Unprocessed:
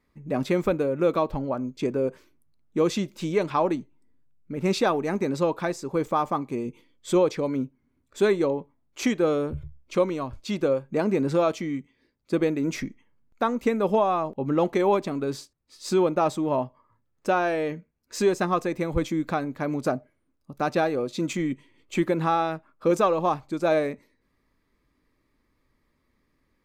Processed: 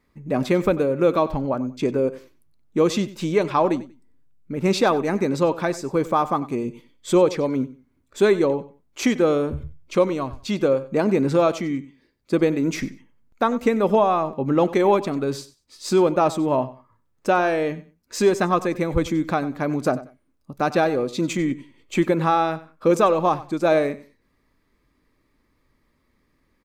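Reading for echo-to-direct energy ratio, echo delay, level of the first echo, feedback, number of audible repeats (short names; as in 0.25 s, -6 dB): -17.0 dB, 94 ms, -17.0 dB, 21%, 2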